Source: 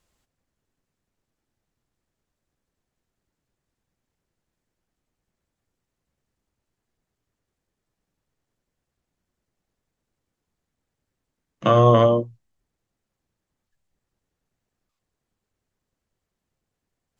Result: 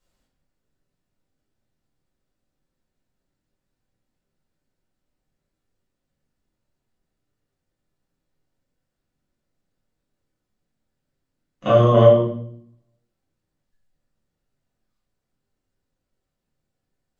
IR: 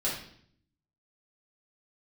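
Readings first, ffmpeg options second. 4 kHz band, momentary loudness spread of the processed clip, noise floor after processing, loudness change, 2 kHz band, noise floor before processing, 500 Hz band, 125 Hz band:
-1.0 dB, 18 LU, -81 dBFS, +2.0 dB, 0.0 dB, -83 dBFS, +3.5 dB, +2.0 dB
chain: -filter_complex "[1:a]atrim=start_sample=2205[a];[0:a][a]afir=irnorm=-1:irlink=0,volume=-7.5dB"

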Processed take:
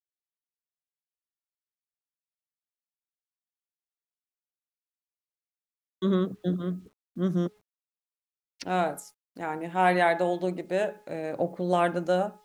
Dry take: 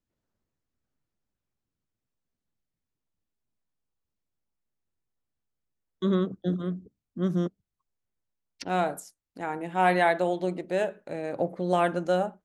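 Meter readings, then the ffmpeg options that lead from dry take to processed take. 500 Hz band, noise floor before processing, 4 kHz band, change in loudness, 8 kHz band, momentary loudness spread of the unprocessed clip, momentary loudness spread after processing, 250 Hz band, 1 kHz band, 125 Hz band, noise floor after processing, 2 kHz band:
0.0 dB, under -85 dBFS, 0.0 dB, 0.0 dB, 0.0 dB, 12 LU, 12 LU, 0.0 dB, 0.0 dB, 0.0 dB, under -85 dBFS, 0.0 dB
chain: -af "bandreject=f=421.9:t=h:w=4,bandreject=f=843.8:t=h:w=4,bandreject=f=1.2657k:t=h:w=4,bandreject=f=1.6876k:t=h:w=4,bandreject=f=2.1095k:t=h:w=4,bandreject=f=2.5314k:t=h:w=4,acrusher=bits=10:mix=0:aa=0.000001"

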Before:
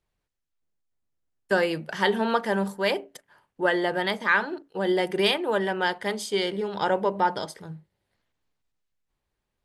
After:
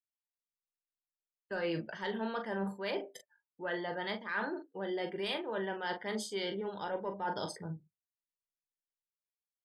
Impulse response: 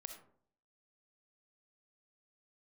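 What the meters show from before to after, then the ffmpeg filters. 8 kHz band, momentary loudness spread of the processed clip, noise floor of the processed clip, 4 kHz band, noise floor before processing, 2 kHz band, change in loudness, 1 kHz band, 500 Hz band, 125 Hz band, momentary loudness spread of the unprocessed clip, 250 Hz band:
-8.5 dB, 6 LU, under -85 dBFS, -12.0 dB, -82 dBFS, -13.0 dB, -12.0 dB, -12.5 dB, -11.5 dB, -8.5 dB, 9 LU, -10.0 dB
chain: -af "acontrast=78,afftdn=nr=36:nf=-37,areverse,acompressor=threshold=-25dB:ratio=10,areverse,aecho=1:1:18|41:0.266|0.398,volume=-9dB"

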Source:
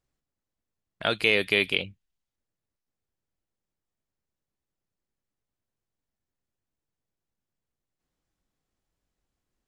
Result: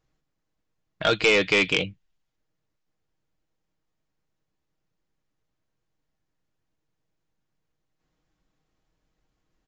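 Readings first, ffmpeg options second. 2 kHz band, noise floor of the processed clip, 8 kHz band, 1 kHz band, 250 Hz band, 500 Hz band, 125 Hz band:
+2.5 dB, -79 dBFS, +12.0 dB, +5.5 dB, +4.5 dB, +4.5 dB, +4.5 dB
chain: -af "highshelf=f=4.9k:g=-6.5,aecho=1:1:6.4:0.4,aresample=16000,asoftclip=type=tanh:threshold=-19dB,aresample=44100,volume=7dB"

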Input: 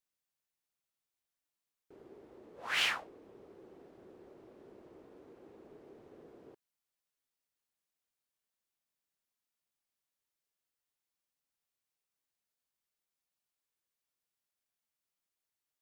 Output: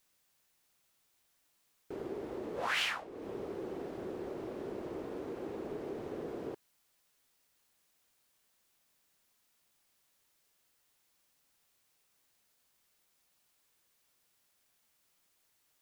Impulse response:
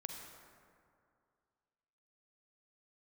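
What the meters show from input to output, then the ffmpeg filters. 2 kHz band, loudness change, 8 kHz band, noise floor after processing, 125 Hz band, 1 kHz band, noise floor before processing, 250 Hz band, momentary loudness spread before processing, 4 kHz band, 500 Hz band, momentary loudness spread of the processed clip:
-1.0 dB, -6.5 dB, -1.5 dB, -75 dBFS, +13.5 dB, +4.0 dB, under -85 dBFS, +14.5 dB, 14 LU, -2.5 dB, +13.5 dB, 11 LU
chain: -af "acompressor=threshold=-50dB:ratio=4,volume=15.5dB"

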